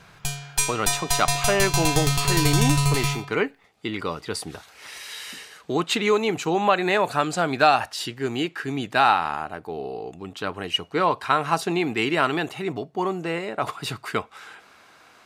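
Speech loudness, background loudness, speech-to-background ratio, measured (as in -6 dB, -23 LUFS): -24.5 LUFS, -23.0 LUFS, -1.5 dB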